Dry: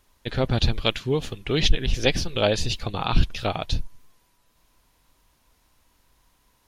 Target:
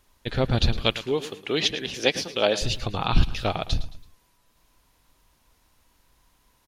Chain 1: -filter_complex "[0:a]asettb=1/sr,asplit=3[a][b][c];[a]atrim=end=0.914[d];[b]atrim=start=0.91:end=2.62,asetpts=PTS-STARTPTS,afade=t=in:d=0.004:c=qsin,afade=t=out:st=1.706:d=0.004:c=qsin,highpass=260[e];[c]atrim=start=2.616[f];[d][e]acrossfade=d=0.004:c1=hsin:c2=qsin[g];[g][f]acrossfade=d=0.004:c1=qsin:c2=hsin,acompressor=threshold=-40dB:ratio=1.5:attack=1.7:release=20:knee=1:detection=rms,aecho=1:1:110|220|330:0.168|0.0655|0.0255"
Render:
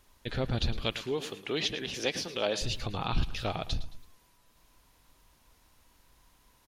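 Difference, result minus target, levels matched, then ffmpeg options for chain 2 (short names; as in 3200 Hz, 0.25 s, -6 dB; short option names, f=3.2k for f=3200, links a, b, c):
compressor: peak gain reduction +11 dB
-filter_complex "[0:a]asettb=1/sr,asplit=3[a][b][c];[a]atrim=end=0.914[d];[b]atrim=start=0.91:end=2.62,asetpts=PTS-STARTPTS,afade=t=in:d=0.004:c=qsin,afade=t=out:st=1.706:d=0.004:c=qsin,highpass=260[e];[c]atrim=start=2.616[f];[d][e]acrossfade=d=0.004:c1=hsin:c2=qsin[g];[g][f]acrossfade=d=0.004:c1=qsin:c2=hsin,aecho=1:1:110|220|330:0.168|0.0655|0.0255"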